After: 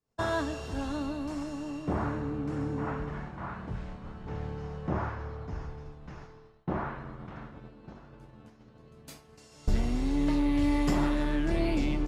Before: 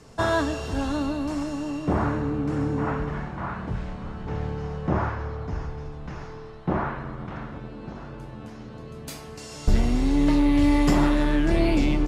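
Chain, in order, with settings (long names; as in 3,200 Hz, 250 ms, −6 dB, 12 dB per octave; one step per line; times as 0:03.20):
downward expander −32 dBFS
level −7 dB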